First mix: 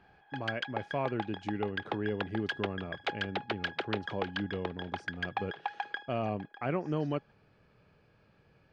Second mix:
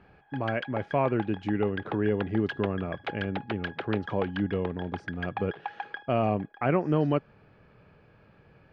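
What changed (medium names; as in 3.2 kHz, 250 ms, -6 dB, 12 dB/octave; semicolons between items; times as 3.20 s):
speech +7.5 dB; master: add tone controls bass 0 dB, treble -13 dB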